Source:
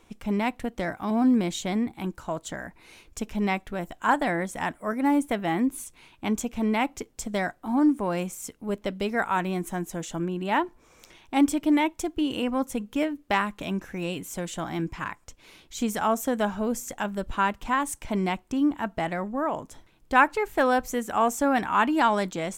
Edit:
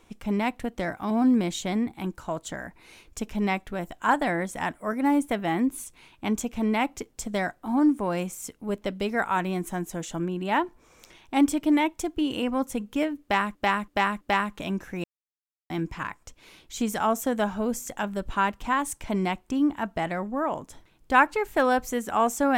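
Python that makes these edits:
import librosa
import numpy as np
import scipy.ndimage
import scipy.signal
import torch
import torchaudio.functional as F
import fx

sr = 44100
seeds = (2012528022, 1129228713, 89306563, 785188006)

y = fx.edit(x, sr, fx.repeat(start_s=13.22, length_s=0.33, count=4),
    fx.silence(start_s=14.05, length_s=0.66), tone=tone)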